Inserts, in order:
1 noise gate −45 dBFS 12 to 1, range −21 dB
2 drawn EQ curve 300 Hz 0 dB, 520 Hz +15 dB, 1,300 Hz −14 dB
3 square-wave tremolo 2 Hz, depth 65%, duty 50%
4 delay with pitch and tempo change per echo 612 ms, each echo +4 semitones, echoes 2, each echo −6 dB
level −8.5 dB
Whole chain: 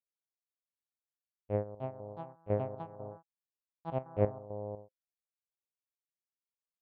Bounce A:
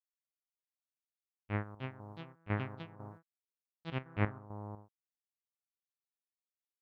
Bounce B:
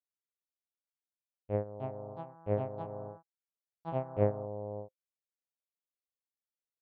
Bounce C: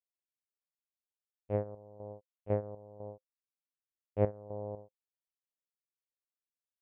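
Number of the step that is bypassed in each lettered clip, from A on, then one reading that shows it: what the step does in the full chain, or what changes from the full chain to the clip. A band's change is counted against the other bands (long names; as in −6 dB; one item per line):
2, change in integrated loudness −3.0 LU
3, change in integrated loudness +1.0 LU
4, 1 kHz band −3.0 dB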